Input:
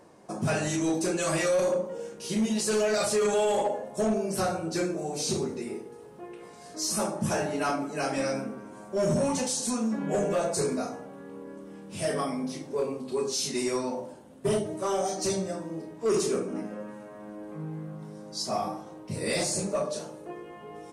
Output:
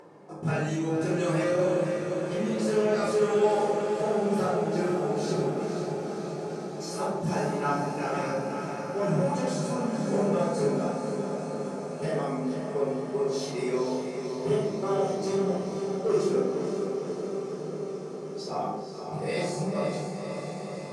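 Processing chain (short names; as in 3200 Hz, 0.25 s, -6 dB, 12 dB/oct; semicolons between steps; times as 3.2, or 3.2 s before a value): HPF 140 Hz 24 dB/oct; gate -34 dBFS, range -13 dB; on a send: diffused feedback echo 0.507 s, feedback 77%, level -6.5 dB; on the sum: shoebox room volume 780 m³, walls furnished, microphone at 4.2 m; upward compressor, threshold -30 dBFS; LPF 2300 Hz 6 dB/oct; gain -6 dB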